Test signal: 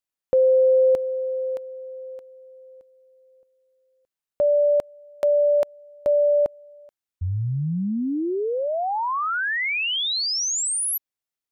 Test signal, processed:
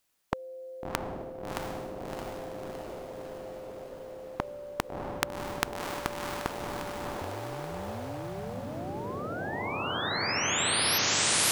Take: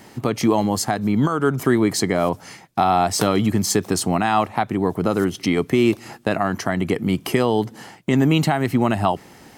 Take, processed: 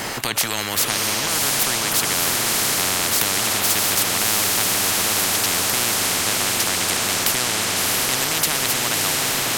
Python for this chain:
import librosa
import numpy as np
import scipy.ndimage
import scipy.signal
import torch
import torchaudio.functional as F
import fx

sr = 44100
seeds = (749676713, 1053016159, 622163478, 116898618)

y = fx.echo_diffused(x, sr, ms=680, feedback_pct=65, wet_db=-3)
y = fx.spectral_comp(y, sr, ratio=10.0)
y = y * 10.0 ** (2.0 / 20.0)